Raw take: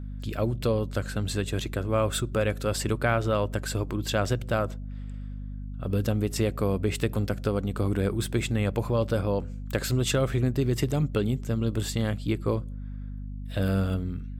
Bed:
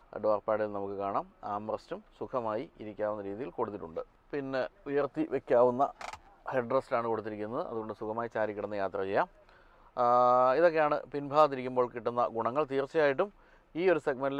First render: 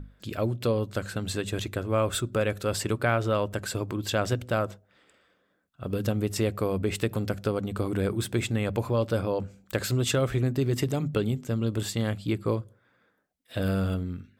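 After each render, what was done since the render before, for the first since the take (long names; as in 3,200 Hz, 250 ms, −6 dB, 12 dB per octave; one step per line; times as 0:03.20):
mains-hum notches 50/100/150/200/250 Hz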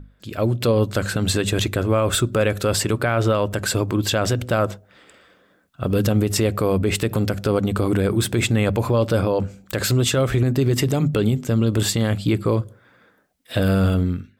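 automatic gain control gain up to 13 dB
brickwall limiter −10 dBFS, peak gain reduction 8 dB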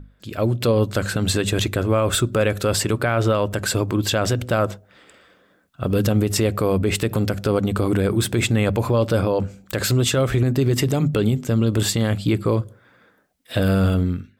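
no processing that can be heard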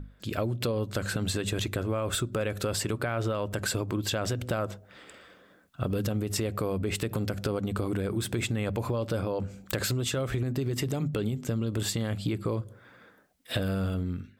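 downward compressor 6 to 1, threshold −27 dBFS, peak gain reduction 12 dB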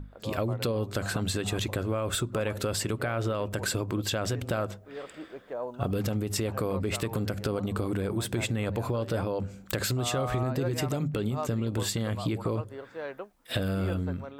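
mix in bed −11 dB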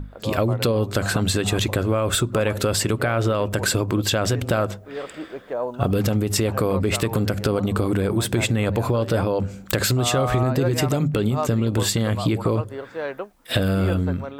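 level +8.5 dB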